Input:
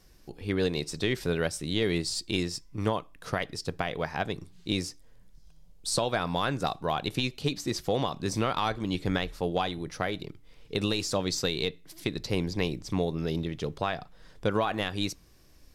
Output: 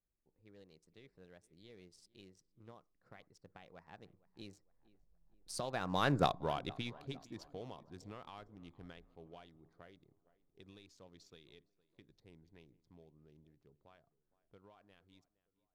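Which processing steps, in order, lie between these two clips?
local Wiener filter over 15 samples; Doppler pass-by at 6.18 s, 22 m/s, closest 3.1 m; tape echo 462 ms, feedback 51%, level -19.5 dB, low-pass 1.7 kHz

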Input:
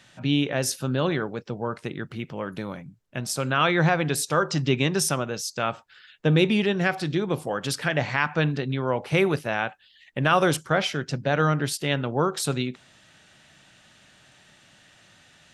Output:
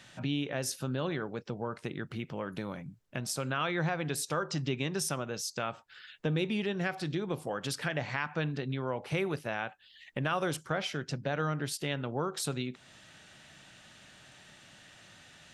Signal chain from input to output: compression 2:1, threshold -37 dBFS, peak gain reduction 12 dB

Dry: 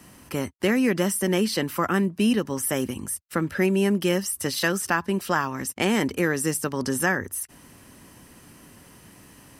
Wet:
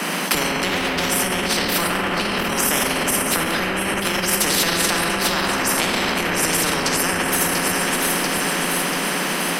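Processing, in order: 0.68–1.08 s: comb filter that takes the minimum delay 7 ms; steep high-pass 170 Hz 96 dB/octave; tone controls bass +14 dB, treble -15 dB; compression, threshold -22 dBFS, peak gain reduction 12 dB; echo whose repeats swap between lows and highs 345 ms, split 880 Hz, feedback 73%, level -9 dB; reverberation RT60 2.5 s, pre-delay 7 ms, DRR -2 dB; loudness maximiser +24 dB; spectrum-flattening compressor 4:1; trim -1 dB

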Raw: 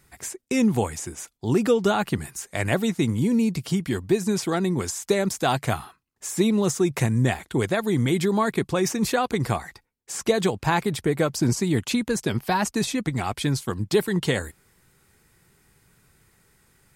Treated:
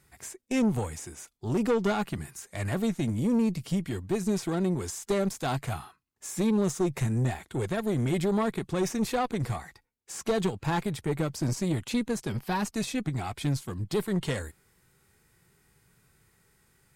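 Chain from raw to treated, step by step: harmonic-percussive split percussive -7 dB; valve stage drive 20 dB, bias 0.5

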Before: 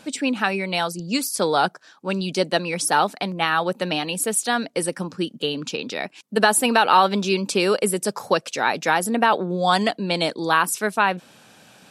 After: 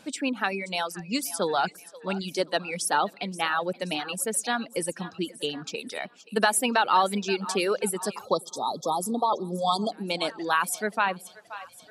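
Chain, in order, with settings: two-band feedback delay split 470 Hz, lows 101 ms, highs 527 ms, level -14 dB; reverb removal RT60 1.4 s; spectral selection erased 8.25–9.92 s, 1.3–3.2 kHz; trim -5 dB

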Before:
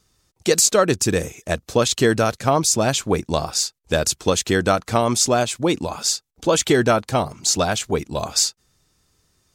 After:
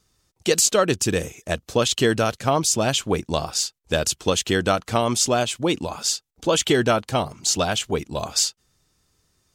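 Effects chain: dynamic bell 3 kHz, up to +8 dB, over -45 dBFS, Q 4.2; trim -2.5 dB

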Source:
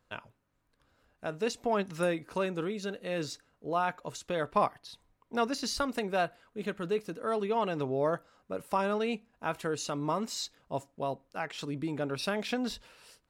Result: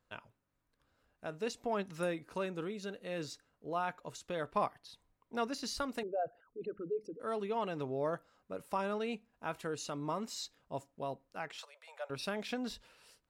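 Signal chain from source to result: 6.03–7.20 s: resonances exaggerated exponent 3; 11.58–12.10 s: steep high-pass 530 Hz 72 dB/octave; trim -6 dB

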